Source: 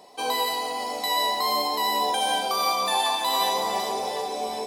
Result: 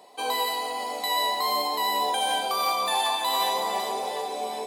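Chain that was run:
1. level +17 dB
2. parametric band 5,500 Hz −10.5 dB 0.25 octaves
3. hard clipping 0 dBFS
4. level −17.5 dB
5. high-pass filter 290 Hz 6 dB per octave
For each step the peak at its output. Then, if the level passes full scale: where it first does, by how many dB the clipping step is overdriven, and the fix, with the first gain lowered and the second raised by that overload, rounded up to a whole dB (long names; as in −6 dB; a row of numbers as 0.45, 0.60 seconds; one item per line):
+5.0, +5.0, 0.0, −17.5, −15.0 dBFS
step 1, 5.0 dB
step 1 +12 dB, step 4 −12.5 dB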